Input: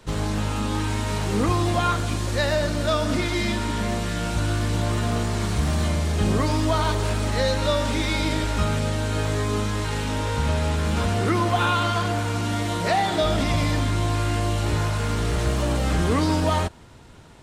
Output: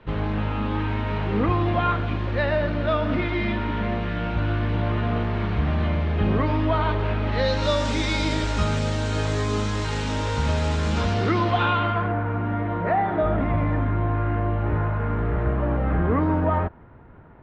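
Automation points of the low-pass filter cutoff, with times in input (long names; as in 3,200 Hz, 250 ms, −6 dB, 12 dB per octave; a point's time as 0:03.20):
low-pass filter 24 dB per octave
0:07.24 2,900 Hz
0:07.74 7,200 Hz
0:10.86 7,200 Hz
0:11.56 4,000 Hz
0:12.16 1,800 Hz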